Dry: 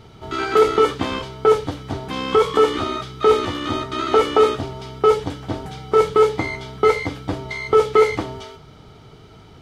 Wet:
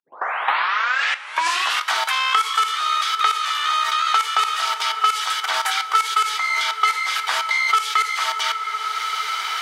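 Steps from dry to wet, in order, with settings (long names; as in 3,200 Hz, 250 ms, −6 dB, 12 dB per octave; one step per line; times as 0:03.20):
turntable start at the beginning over 1.90 s
high-pass filter 1,200 Hz 24 dB per octave
high-shelf EQ 4,700 Hz +7 dB
output level in coarse steps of 22 dB
coupled-rooms reverb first 0.34 s, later 4.1 s, from −18 dB, DRR 11 dB
boost into a limiter +23.5 dB
multiband upward and downward compressor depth 100%
level −6 dB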